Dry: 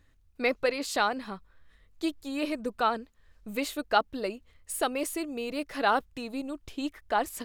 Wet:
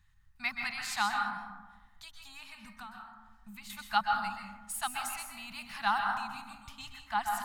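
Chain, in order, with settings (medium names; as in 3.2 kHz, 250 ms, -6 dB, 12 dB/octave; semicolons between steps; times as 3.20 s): elliptic band-stop 200–830 Hz, stop band 40 dB; dynamic bell 250 Hz, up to +4 dB, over -45 dBFS, Q 0.77; 1.14–3.70 s: compression 4:1, threshold -45 dBFS, peak gain reduction 19 dB; plate-style reverb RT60 1.1 s, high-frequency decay 0.35×, pre-delay 115 ms, DRR 1.5 dB; trim -3 dB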